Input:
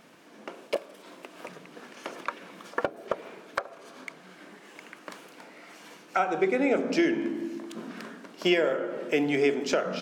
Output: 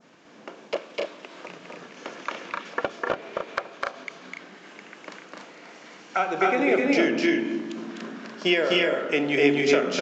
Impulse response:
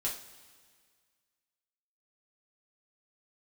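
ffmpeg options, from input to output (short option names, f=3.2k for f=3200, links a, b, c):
-af "aecho=1:1:253.6|288.6:0.794|0.562,aresample=16000,aresample=44100,adynamicequalizer=threshold=0.00891:dfrequency=2700:dqfactor=0.8:tfrequency=2700:tqfactor=0.8:attack=5:release=100:ratio=0.375:range=2.5:mode=boostabove:tftype=bell"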